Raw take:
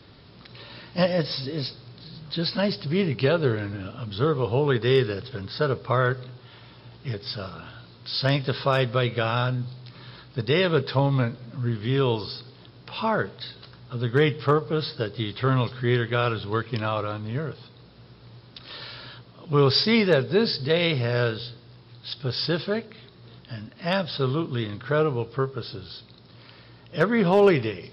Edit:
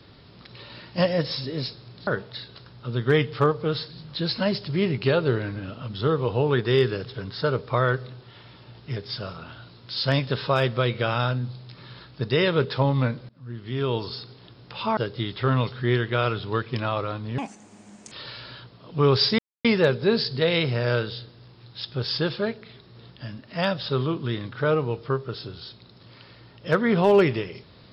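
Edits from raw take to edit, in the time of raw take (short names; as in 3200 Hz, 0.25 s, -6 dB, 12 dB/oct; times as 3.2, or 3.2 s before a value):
11.46–12.31 fade in, from -23 dB
13.14–14.97 move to 2.07
17.38–18.66 speed 174%
19.93 insert silence 0.26 s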